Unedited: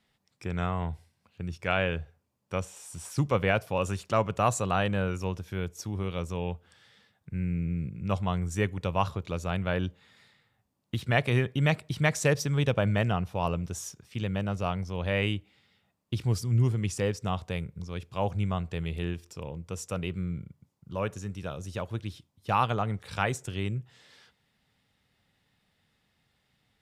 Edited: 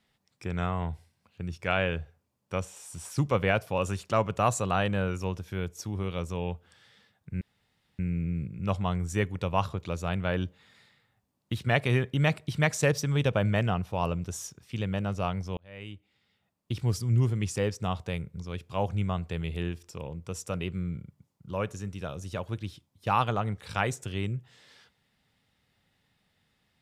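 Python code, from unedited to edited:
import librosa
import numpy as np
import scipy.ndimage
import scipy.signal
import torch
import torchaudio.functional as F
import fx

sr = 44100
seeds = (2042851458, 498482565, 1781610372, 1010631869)

y = fx.edit(x, sr, fx.insert_room_tone(at_s=7.41, length_s=0.58),
    fx.fade_in_span(start_s=14.99, length_s=1.37), tone=tone)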